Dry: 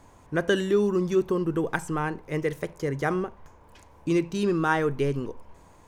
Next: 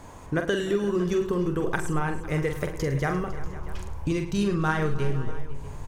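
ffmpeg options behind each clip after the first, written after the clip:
-af "asubboost=boost=6.5:cutoff=110,acompressor=threshold=0.02:ratio=3,aecho=1:1:45|107|300|348|505|640:0.447|0.188|0.119|0.15|0.126|0.119,volume=2.51"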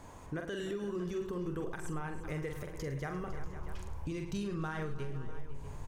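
-af "alimiter=limit=0.075:level=0:latency=1:release=187,volume=0.473"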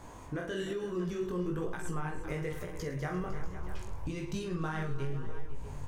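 -af "flanger=delay=16.5:depth=5.7:speed=1.1,volume=1.88"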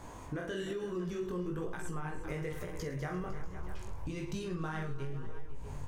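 -af "acompressor=threshold=0.0141:ratio=2,volume=1.12"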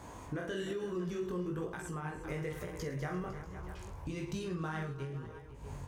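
-af "highpass=42"

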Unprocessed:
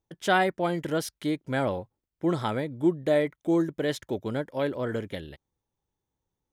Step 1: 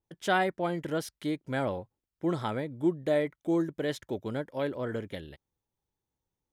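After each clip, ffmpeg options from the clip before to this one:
-af "adynamicequalizer=threshold=0.00708:dfrequency=3000:dqfactor=0.7:tfrequency=3000:tqfactor=0.7:attack=5:release=100:ratio=0.375:range=2.5:mode=cutabove:tftype=highshelf,volume=0.668"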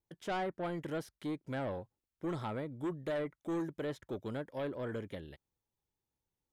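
-filter_complex "[0:a]acrossover=split=1700[s0][s1];[s0]asoftclip=type=tanh:threshold=0.0376[s2];[s1]acompressor=threshold=0.00316:ratio=6[s3];[s2][s3]amix=inputs=2:normalize=0,volume=0.668"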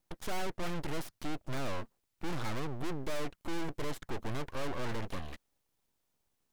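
-af "aeval=exprs='(tanh(158*val(0)+0.55)-tanh(0.55))/158':c=same,aeval=exprs='abs(val(0))':c=same,volume=4.47"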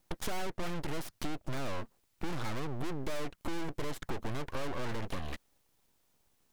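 -af "acompressor=threshold=0.0126:ratio=6,volume=2.37"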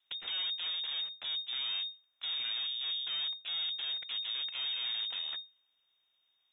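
-af "lowpass=f=3100:t=q:w=0.5098,lowpass=f=3100:t=q:w=0.6013,lowpass=f=3100:t=q:w=0.9,lowpass=f=3100:t=q:w=2.563,afreqshift=-3700,volume=0.668"

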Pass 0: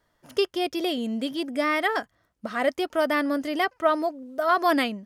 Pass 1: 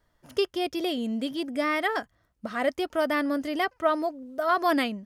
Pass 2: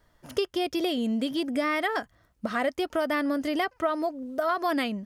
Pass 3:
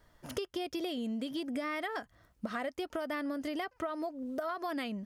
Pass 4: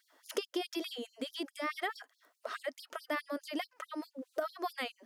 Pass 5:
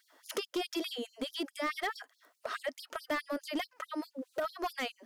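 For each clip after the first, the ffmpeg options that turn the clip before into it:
-af "lowshelf=f=100:g=10.5,volume=0.75"
-af "acompressor=threshold=0.0316:ratio=4,volume=1.88"
-af "acompressor=threshold=0.0178:ratio=4"
-af "afftfilt=real='re*gte(b*sr/1024,220*pow(3900/220,0.5+0.5*sin(2*PI*4.7*pts/sr)))':imag='im*gte(b*sr/1024,220*pow(3900/220,0.5+0.5*sin(2*PI*4.7*pts/sr)))':win_size=1024:overlap=0.75,volume=1.33"
-af "volume=35.5,asoftclip=hard,volume=0.0282,volume=1.41"

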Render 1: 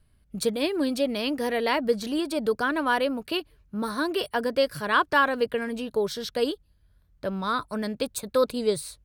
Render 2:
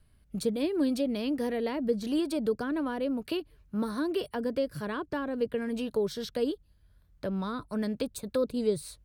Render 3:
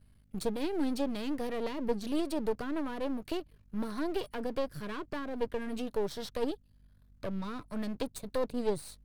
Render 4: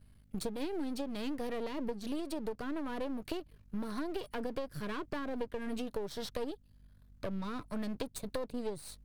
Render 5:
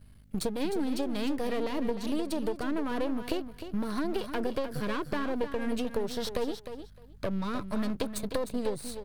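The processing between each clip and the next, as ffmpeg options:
-filter_complex "[0:a]acrossover=split=450[s0][s1];[s1]acompressor=threshold=0.0126:ratio=6[s2];[s0][s2]amix=inputs=2:normalize=0"
-af "aeval=exprs='if(lt(val(0),0),0.251*val(0),val(0))':c=same,aeval=exprs='val(0)+0.000708*(sin(2*PI*50*n/s)+sin(2*PI*2*50*n/s)/2+sin(2*PI*3*50*n/s)/3+sin(2*PI*4*50*n/s)/4+sin(2*PI*5*50*n/s)/5)':c=same"
-af "acompressor=threshold=0.02:ratio=10,volume=1.19"
-af "aecho=1:1:306|612:0.316|0.0506,volume=2"

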